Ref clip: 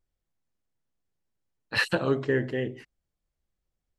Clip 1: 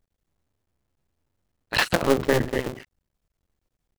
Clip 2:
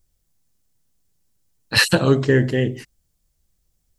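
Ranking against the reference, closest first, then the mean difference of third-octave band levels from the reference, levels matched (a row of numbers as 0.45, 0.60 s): 2, 1; 2.5, 8.0 dB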